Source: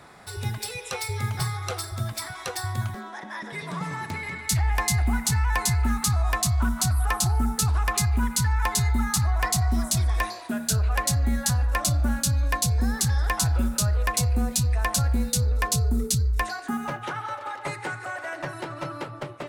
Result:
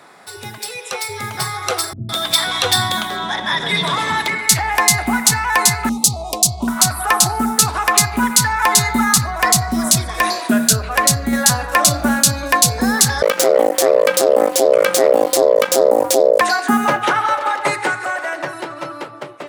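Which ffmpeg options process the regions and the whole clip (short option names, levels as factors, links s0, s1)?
-filter_complex "[0:a]asettb=1/sr,asplit=3[s0][s1][s2];[s0]atrim=end=1.934[s3];[s1]atrim=start=1.93:end=4.28,asetpts=PTS-STARTPTS,afade=t=in:d=0.004:c=qsin,afade=t=out:st=2.346:d=0.004:c=qsin,equalizer=f=3500:w=4.1:g=14.5,aeval=exprs='val(0)+0.0112*(sin(2*PI*60*n/s)+sin(2*PI*2*60*n/s)/2+sin(2*PI*3*60*n/s)/3+sin(2*PI*4*60*n/s)/4+sin(2*PI*5*60*n/s)/5)':c=same,acrossover=split=300[s4][s5];[s5]adelay=160[s6];[s4][s6]amix=inputs=2:normalize=0,atrim=end_sample=103635[s7];[s2]atrim=start=4.276[s8];[s3][s7]acrossfade=d=0.004:c1=hsin:c2=qsin[s9];[s9][s8]acrossfade=d=0.004:c1=qsin:c2=hsin,asettb=1/sr,asplit=3[s10][s11][s12];[s10]atrim=end=5.894[s13];[s11]atrim=start=5.89:end=6.68,asetpts=PTS-STARTPTS,afade=t=in:d=0.004:c=qsin,afade=t=out:st=0.786:d=0.004:c=qsin,aemphasis=mode=production:type=50kf,adynamicsmooth=sensitivity=2:basefreq=3400,asuperstop=centerf=1600:order=4:qfactor=0.51[s14];[s12]atrim=start=6.676[s15];[s13][s14]acrossfade=d=0.004:c1=hsin:c2=qsin[s16];[s16][s15]acrossfade=d=0.004:c1=qsin:c2=hsin,asettb=1/sr,asplit=3[s17][s18][s19];[s17]atrim=end=9.124[s20];[s18]atrim=start=9.12:end=11.33,asetpts=PTS-STARTPTS,afade=t=in:d=0.004:c=qsin,afade=t=out:st=2.206:d=0.004:c=qsin,bass=f=250:g=6,treble=f=4000:g=1,bandreject=f=850:w=12,acompressor=threshold=0.0794:ratio=2:attack=3.2:release=140:knee=1:detection=peak[s21];[s19]atrim=start=11.326[s22];[s20][s21]acrossfade=d=0.004:c1=hsin:c2=qsin[s23];[s23][s22]acrossfade=d=0.004:c1=qsin:c2=hsin,asettb=1/sr,asplit=3[s24][s25][s26];[s24]atrim=end=13.224[s27];[s25]atrim=start=13.22:end=16.41,asetpts=PTS-STARTPTS,afade=t=in:d=0.004:c=qsin,afade=t=out:st=3.186:d=0.004:c=qsin,aeval=exprs='max(val(0),0)':c=same,aeval=exprs='val(0)*sin(2*PI*530*n/s)':c=same[s28];[s26]atrim=start=16.406[s29];[s27][s28]acrossfade=d=0.004:c1=hsin:c2=qsin[s30];[s30][s29]acrossfade=d=0.004:c1=qsin:c2=hsin,highpass=250,dynaudnorm=f=160:g=21:m=3.98,alimiter=level_in=2:limit=0.891:release=50:level=0:latency=1,volume=0.891"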